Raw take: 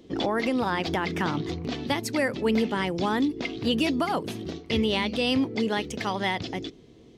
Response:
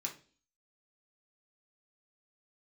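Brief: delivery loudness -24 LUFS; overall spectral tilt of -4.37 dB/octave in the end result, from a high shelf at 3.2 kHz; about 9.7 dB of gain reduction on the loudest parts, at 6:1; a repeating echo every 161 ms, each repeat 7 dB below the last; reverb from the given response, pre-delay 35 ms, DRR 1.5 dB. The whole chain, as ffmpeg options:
-filter_complex "[0:a]highshelf=f=3200:g=-9,acompressor=threshold=0.0282:ratio=6,aecho=1:1:161|322|483|644|805:0.447|0.201|0.0905|0.0407|0.0183,asplit=2[s0][s1];[1:a]atrim=start_sample=2205,adelay=35[s2];[s1][s2]afir=irnorm=-1:irlink=0,volume=0.891[s3];[s0][s3]amix=inputs=2:normalize=0,volume=2.66"

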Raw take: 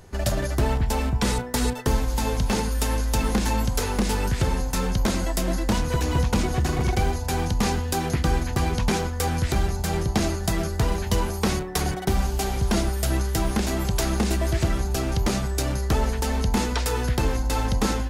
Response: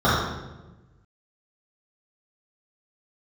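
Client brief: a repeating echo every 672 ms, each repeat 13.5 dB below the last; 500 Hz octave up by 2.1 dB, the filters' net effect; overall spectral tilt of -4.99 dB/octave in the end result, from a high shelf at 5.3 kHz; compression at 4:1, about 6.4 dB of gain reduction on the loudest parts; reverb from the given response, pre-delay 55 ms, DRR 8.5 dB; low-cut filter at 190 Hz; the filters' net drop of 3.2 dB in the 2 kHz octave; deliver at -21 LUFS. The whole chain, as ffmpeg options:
-filter_complex "[0:a]highpass=190,equalizer=f=500:t=o:g=3,equalizer=f=2000:t=o:g=-3.5,highshelf=f=5300:g=-6,acompressor=threshold=0.0398:ratio=4,aecho=1:1:672|1344:0.211|0.0444,asplit=2[s0][s1];[1:a]atrim=start_sample=2205,adelay=55[s2];[s1][s2]afir=irnorm=-1:irlink=0,volume=0.0282[s3];[s0][s3]amix=inputs=2:normalize=0,volume=3.16"

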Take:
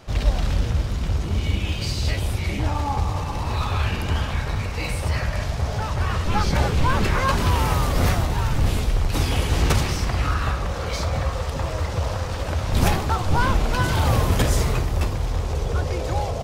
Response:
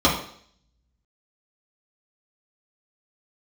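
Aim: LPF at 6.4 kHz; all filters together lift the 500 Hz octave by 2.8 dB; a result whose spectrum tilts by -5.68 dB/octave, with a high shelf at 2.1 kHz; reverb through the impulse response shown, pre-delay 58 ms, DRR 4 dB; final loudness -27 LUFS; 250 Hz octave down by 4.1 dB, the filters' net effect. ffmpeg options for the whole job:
-filter_complex "[0:a]lowpass=6400,equalizer=f=250:t=o:g=-8,equalizer=f=500:t=o:g=5,highshelf=f=2100:g=3,asplit=2[s0][s1];[1:a]atrim=start_sample=2205,adelay=58[s2];[s1][s2]afir=irnorm=-1:irlink=0,volume=0.0668[s3];[s0][s3]amix=inputs=2:normalize=0,volume=0.447"

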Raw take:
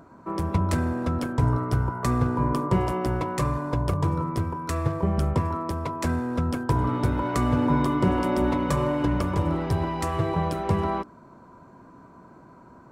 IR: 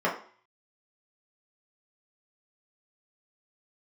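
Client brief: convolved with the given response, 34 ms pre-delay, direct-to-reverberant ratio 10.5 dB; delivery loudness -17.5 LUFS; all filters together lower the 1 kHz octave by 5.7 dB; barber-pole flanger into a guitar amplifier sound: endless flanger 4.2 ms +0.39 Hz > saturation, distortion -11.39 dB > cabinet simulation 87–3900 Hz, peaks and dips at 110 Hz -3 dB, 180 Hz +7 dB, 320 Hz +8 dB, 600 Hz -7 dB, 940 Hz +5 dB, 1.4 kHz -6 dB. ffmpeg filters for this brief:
-filter_complex "[0:a]equalizer=f=1000:t=o:g=-8.5,asplit=2[s0][s1];[1:a]atrim=start_sample=2205,adelay=34[s2];[s1][s2]afir=irnorm=-1:irlink=0,volume=0.0631[s3];[s0][s3]amix=inputs=2:normalize=0,asplit=2[s4][s5];[s5]adelay=4.2,afreqshift=0.39[s6];[s4][s6]amix=inputs=2:normalize=1,asoftclip=threshold=0.0562,highpass=87,equalizer=f=110:t=q:w=4:g=-3,equalizer=f=180:t=q:w=4:g=7,equalizer=f=320:t=q:w=4:g=8,equalizer=f=600:t=q:w=4:g=-7,equalizer=f=940:t=q:w=4:g=5,equalizer=f=1400:t=q:w=4:g=-6,lowpass=f=3900:w=0.5412,lowpass=f=3900:w=1.3066,volume=4.22"

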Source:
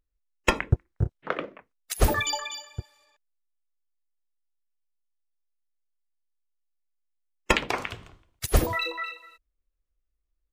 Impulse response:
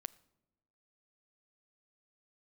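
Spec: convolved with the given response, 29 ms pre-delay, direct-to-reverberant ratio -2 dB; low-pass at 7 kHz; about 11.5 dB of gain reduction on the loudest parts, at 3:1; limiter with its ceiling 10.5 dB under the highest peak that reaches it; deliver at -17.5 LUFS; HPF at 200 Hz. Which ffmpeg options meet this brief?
-filter_complex "[0:a]highpass=200,lowpass=7000,acompressor=threshold=0.02:ratio=3,alimiter=level_in=1.26:limit=0.0631:level=0:latency=1,volume=0.794,asplit=2[s0][s1];[1:a]atrim=start_sample=2205,adelay=29[s2];[s1][s2]afir=irnorm=-1:irlink=0,volume=2[s3];[s0][s3]amix=inputs=2:normalize=0,volume=7.94"

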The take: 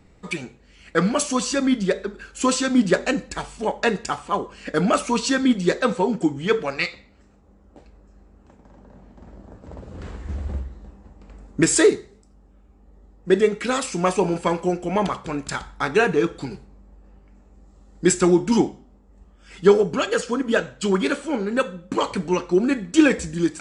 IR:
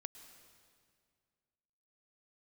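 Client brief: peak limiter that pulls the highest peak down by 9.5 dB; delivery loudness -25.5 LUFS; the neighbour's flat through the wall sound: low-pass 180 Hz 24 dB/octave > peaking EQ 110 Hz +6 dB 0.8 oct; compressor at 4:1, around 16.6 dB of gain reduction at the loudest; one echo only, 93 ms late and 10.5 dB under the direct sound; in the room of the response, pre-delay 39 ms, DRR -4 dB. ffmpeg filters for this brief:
-filter_complex "[0:a]acompressor=threshold=0.0316:ratio=4,alimiter=limit=0.0631:level=0:latency=1,aecho=1:1:93:0.299,asplit=2[s0][s1];[1:a]atrim=start_sample=2205,adelay=39[s2];[s1][s2]afir=irnorm=-1:irlink=0,volume=2.66[s3];[s0][s3]amix=inputs=2:normalize=0,lowpass=f=180:w=0.5412,lowpass=f=180:w=1.3066,equalizer=f=110:t=o:w=0.8:g=6,volume=3.98"

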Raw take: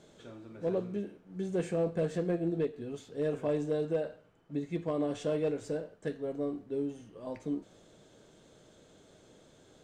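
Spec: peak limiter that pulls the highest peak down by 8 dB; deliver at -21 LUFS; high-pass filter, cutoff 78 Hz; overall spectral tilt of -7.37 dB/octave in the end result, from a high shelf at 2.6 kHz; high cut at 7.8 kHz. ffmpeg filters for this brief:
-af "highpass=78,lowpass=7800,highshelf=f=2600:g=-6,volume=8.41,alimiter=limit=0.282:level=0:latency=1"

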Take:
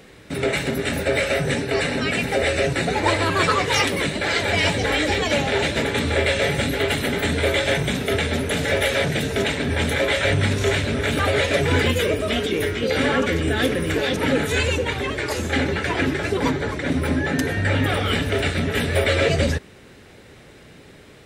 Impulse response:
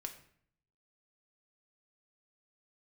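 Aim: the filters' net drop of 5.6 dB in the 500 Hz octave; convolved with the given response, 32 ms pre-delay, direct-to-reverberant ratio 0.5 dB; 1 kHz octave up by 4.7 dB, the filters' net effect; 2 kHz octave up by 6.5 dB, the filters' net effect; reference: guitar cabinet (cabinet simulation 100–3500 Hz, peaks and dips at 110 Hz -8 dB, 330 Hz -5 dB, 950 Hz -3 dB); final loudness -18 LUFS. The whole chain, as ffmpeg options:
-filter_complex "[0:a]equalizer=f=500:t=o:g=-8.5,equalizer=f=1000:t=o:g=8.5,equalizer=f=2000:t=o:g=6,asplit=2[s0][s1];[1:a]atrim=start_sample=2205,adelay=32[s2];[s1][s2]afir=irnorm=-1:irlink=0,volume=1.26[s3];[s0][s3]amix=inputs=2:normalize=0,highpass=100,equalizer=f=110:t=q:w=4:g=-8,equalizer=f=330:t=q:w=4:g=-5,equalizer=f=950:t=q:w=4:g=-3,lowpass=f=3500:w=0.5412,lowpass=f=3500:w=1.3066,volume=0.794"

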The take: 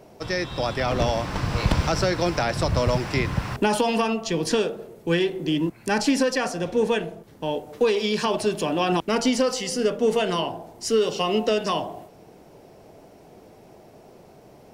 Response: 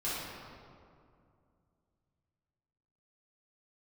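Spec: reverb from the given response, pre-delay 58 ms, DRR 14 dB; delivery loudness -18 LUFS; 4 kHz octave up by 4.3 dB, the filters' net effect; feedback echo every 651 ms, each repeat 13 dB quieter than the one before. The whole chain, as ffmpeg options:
-filter_complex "[0:a]equalizer=f=4000:t=o:g=6,aecho=1:1:651|1302|1953:0.224|0.0493|0.0108,asplit=2[s0][s1];[1:a]atrim=start_sample=2205,adelay=58[s2];[s1][s2]afir=irnorm=-1:irlink=0,volume=0.1[s3];[s0][s3]amix=inputs=2:normalize=0,volume=1.78"

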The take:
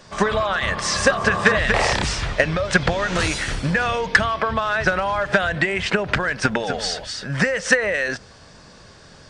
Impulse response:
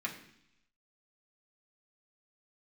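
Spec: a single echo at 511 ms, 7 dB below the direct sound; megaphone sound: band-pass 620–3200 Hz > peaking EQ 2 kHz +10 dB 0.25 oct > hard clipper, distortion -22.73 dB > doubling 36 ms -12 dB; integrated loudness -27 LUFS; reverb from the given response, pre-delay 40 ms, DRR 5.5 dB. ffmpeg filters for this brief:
-filter_complex "[0:a]aecho=1:1:511:0.447,asplit=2[s0][s1];[1:a]atrim=start_sample=2205,adelay=40[s2];[s1][s2]afir=irnorm=-1:irlink=0,volume=0.376[s3];[s0][s3]amix=inputs=2:normalize=0,highpass=620,lowpass=3200,equalizer=f=2000:t=o:w=0.25:g=10,asoftclip=type=hard:threshold=0.596,asplit=2[s4][s5];[s5]adelay=36,volume=0.251[s6];[s4][s6]amix=inputs=2:normalize=0,volume=0.316"

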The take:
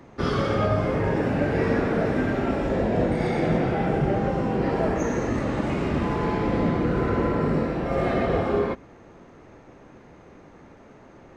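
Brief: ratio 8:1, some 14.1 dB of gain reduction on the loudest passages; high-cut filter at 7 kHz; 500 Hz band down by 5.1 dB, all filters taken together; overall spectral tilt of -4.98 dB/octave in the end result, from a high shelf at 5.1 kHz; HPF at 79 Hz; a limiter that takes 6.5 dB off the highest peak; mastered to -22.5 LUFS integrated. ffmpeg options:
-af "highpass=79,lowpass=7000,equalizer=f=500:t=o:g=-6.5,highshelf=f=5100:g=-5.5,acompressor=threshold=0.0158:ratio=8,volume=9.44,alimiter=limit=0.237:level=0:latency=1"

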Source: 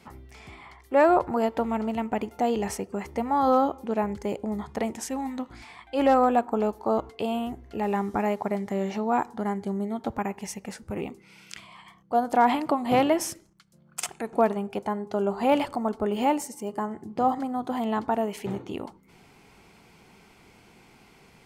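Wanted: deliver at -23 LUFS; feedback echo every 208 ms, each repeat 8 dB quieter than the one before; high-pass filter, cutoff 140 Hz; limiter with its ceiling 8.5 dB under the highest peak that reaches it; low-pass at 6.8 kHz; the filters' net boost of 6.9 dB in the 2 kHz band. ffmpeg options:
-af "highpass=140,lowpass=6800,equalizer=f=2000:t=o:g=8.5,alimiter=limit=0.178:level=0:latency=1,aecho=1:1:208|416|624|832|1040:0.398|0.159|0.0637|0.0255|0.0102,volume=1.68"

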